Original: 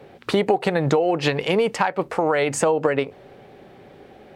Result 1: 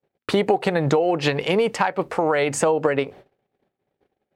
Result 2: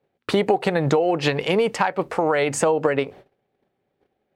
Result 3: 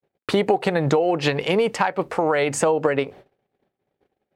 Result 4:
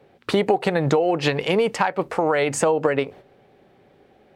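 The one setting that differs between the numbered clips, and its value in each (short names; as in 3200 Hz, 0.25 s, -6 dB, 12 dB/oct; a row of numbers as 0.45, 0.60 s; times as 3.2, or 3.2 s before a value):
gate, range: -42, -28, -56, -9 dB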